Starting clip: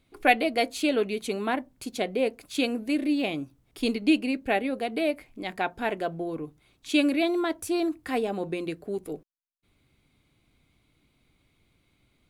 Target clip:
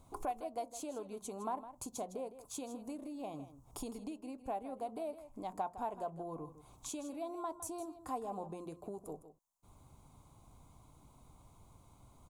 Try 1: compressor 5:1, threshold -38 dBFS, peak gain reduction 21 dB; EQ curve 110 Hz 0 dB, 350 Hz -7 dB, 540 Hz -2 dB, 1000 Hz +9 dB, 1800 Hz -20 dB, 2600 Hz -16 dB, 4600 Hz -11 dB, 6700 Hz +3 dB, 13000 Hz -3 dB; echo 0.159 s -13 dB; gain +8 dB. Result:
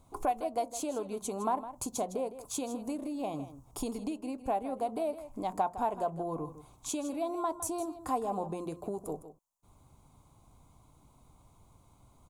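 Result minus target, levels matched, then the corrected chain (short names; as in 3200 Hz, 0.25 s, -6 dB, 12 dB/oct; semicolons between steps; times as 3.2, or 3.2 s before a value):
compressor: peak gain reduction -8 dB
compressor 5:1, threshold -48 dBFS, peak gain reduction 29 dB; EQ curve 110 Hz 0 dB, 350 Hz -7 dB, 540 Hz -2 dB, 1000 Hz +9 dB, 1800 Hz -20 dB, 2600 Hz -16 dB, 4600 Hz -11 dB, 6700 Hz +3 dB, 13000 Hz -3 dB; echo 0.159 s -13 dB; gain +8 dB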